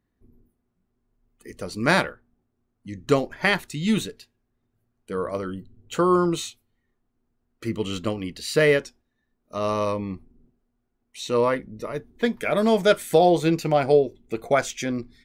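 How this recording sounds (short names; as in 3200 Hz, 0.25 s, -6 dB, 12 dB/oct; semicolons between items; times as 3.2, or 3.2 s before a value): noise floor -76 dBFS; spectral tilt -4.5 dB/oct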